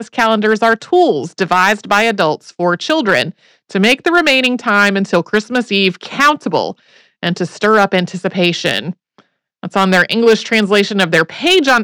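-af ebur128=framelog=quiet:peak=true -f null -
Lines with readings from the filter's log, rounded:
Integrated loudness:
  I:         -13.1 LUFS
  Threshold: -23.5 LUFS
Loudness range:
  LRA:         2.4 LU
  Threshold: -33.9 LUFS
  LRA low:   -15.1 LUFS
  LRA high:  -12.8 LUFS
True peak:
  Peak:       -1.9 dBFS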